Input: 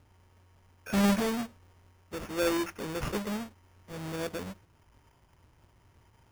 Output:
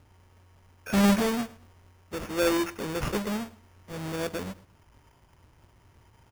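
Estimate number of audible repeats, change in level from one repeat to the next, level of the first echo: 2, -10.0 dB, -20.5 dB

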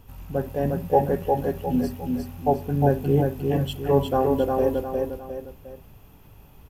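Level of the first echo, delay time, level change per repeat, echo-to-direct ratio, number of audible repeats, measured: -3.5 dB, 355 ms, -8.0 dB, -2.5 dB, 3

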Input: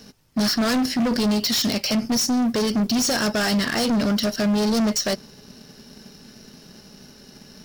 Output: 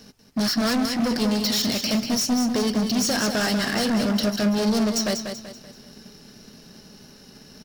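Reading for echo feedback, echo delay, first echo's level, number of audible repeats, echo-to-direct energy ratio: 39%, 191 ms, -7.0 dB, 4, -6.5 dB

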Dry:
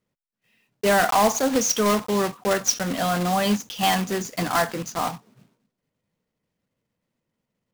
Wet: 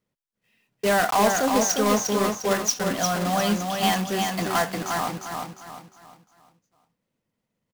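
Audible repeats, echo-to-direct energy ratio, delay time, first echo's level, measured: 4, -4.0 dB, 353 ms, -4.5 dB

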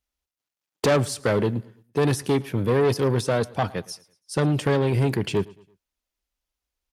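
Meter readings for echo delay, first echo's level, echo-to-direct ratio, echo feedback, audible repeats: 111 ms, -22.5 dB, -22.0 dB, 40%, 2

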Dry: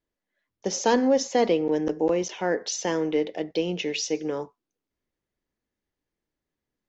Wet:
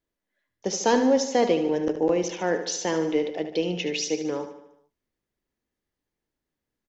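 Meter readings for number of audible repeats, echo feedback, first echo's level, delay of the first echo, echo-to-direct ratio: 5, 55%, -10.0 dB, 74 ms, -8.5 dB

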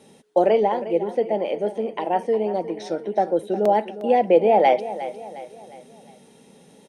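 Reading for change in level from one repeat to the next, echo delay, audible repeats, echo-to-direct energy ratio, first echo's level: -7.0 dB, 357 ms, 4, -13.0 dB, -14.0 dB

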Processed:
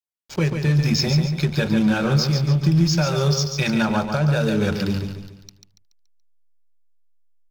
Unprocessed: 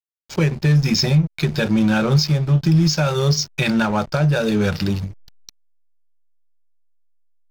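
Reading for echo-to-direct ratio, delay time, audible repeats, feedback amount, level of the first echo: -5.5 dB, 142 ms, 4, 41%, -6.5 dB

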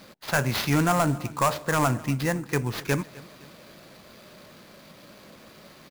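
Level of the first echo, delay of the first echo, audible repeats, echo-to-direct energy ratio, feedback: -21.0 dB, 258 ms, 3, -20.0 dB, 47%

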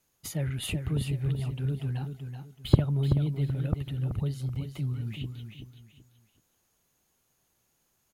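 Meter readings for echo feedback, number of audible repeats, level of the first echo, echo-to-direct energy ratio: 28%, 3, -7.5 dB, -7.0 dB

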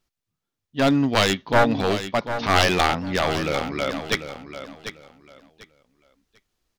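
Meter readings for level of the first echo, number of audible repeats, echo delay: -10.5 dB, 2, 744 ms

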